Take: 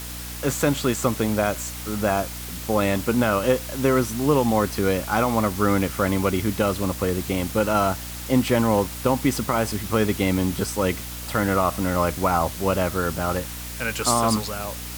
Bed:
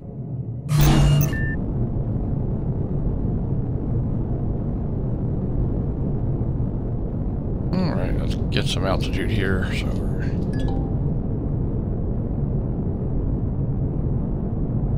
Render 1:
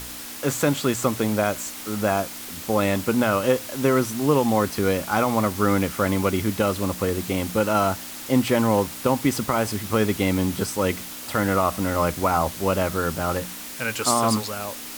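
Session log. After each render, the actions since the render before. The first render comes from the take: de-hum 60 Hz, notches 3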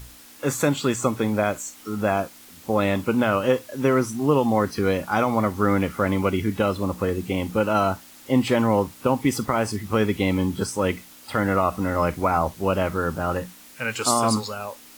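noise print and reduce 11 dB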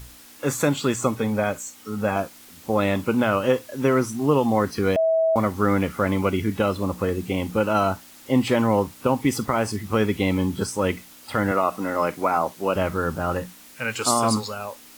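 1.15–2.16 notch comb 340 Hz; 4.96–5.36 bleep 649 Hz -16.5 dBFS; 11.51–12.76 HPF 230 Hz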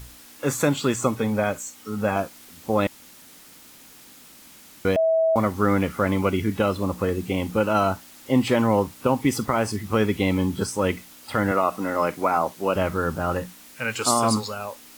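2.87–4.85 room tone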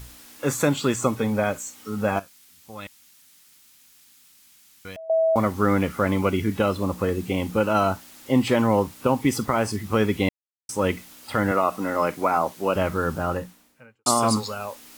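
2.19–5.1 passive tone stack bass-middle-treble 5-5-5; 10.29–10.69 mute; 13.14–14.06 studio fade out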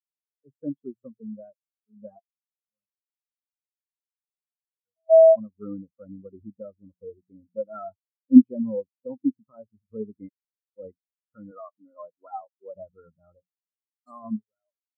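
AGC gain up to 11 dB; spectral expander 4:1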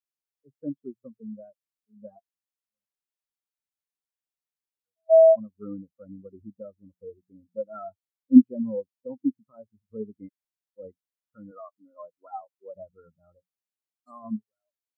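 gain -1.5 dB

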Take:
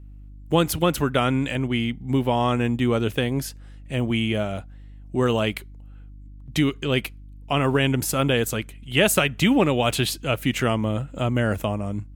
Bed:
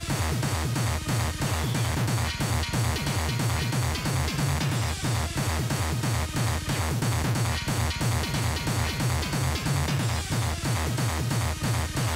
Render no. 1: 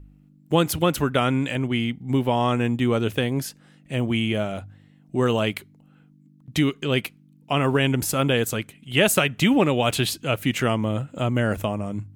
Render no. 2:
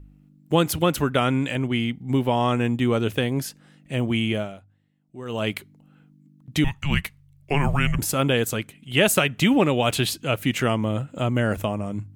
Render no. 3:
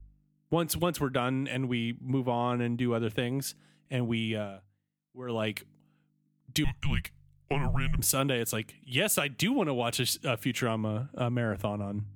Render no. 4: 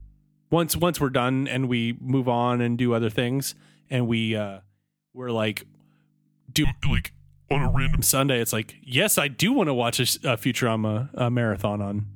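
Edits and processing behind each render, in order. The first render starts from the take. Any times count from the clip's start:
de-hum 50 Hz, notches 2
4.33–5.51 dip -15.5 dB, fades 0.26 s; 6.64–7.99 frequency shift -290 Hz
compressor 4:1, threshold -27 dBFS, peak gain reduction 11.5 dB; three-band expander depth 70%
gain +6.5 dB

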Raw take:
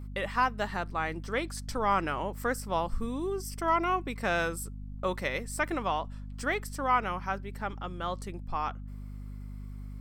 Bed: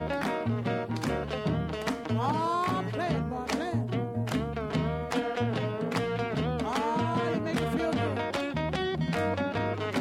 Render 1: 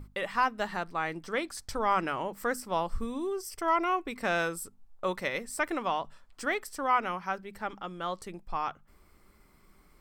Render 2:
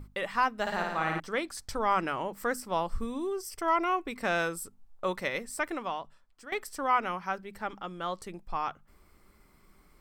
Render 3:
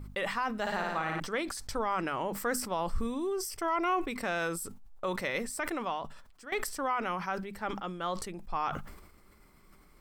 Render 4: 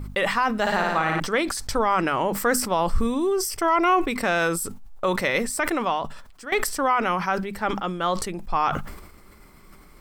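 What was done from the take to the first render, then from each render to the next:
notches 50/100/150/200/250 Hz
0.61–1.2 flutter echo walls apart 9.6 m, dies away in 1.1 s; 5.39–6.52 fade out, to -16 dB
limiter -22 dBFS, peak gain reduction 8 dB; sustainer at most 60 dB/s
gain +10 dB

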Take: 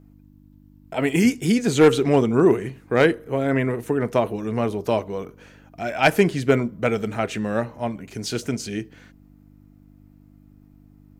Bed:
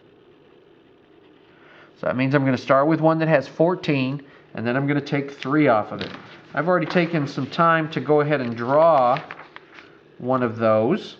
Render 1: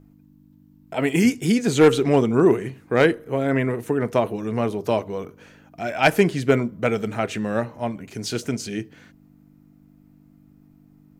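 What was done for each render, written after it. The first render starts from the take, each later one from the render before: de-hum 50 Hz, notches 2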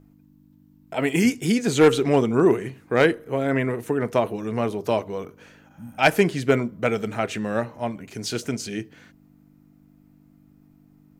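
low shelf 400 Hz -2.5 dB; 5.73–5.96 spectral repair 250–8100 Hz before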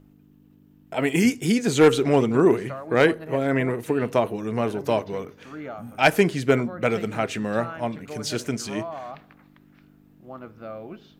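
add bed -19 dB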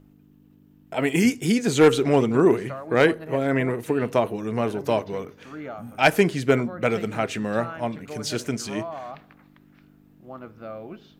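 nothing audible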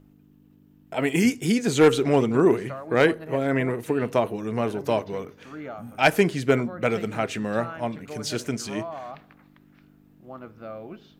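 gain -1 dB

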